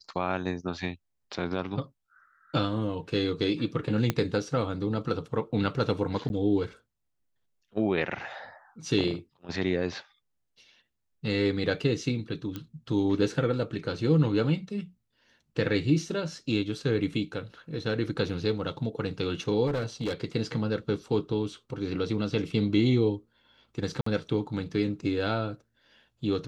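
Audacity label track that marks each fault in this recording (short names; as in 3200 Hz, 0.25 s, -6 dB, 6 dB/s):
4.100000	4.100000	pop -11 dBFS
6.290000	6.300000	gap
12.560000	12.560000	pop -21 dBFS
19.660000	20.130000	clipped -25 dBFS
24.010000	24.060000	gap 54 ms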